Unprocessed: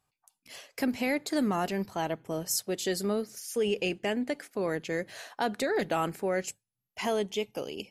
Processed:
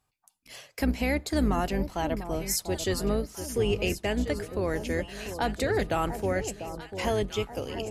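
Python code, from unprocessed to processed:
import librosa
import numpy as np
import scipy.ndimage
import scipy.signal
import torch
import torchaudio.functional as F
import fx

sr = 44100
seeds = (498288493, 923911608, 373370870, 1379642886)

y = fx.octave_divider(x, sr, octaves=2, level_db=0.0)
y = fx.echo_alternate(y, sr, ms=694, hz=990.0, feedback_pct=70, wet_db=-9.5)
y = y * librosa.db_to_amplitude(1.0)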